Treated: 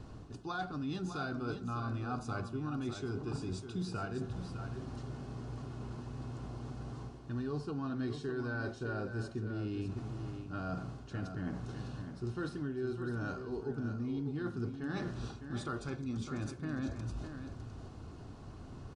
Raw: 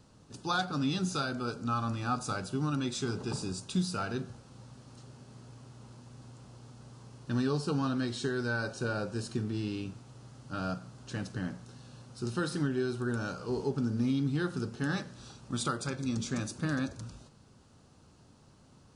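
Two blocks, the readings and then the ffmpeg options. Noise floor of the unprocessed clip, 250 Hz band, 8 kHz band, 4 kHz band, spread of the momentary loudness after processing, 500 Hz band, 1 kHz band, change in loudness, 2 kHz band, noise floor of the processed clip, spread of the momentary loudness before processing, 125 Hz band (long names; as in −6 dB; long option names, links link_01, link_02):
−60 dBFS, −5.0 dB, −13.5 dB, −11.0 dB, 7 LU, −4.0 dB, −6.0 dB, −6.0 dB, −6.5 dB, −49 dBFS, 20 LU, −3.0 dB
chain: -af "lowpass=frequency=1900:poles=1,lowshelf=frequency=120:gain=7,aecho=1:1:2.8:0.35,areverse,acompressor=threshold=-46dB:ratio=5,areverse,aecho=1:1:605:0.376,volume=8.5dB"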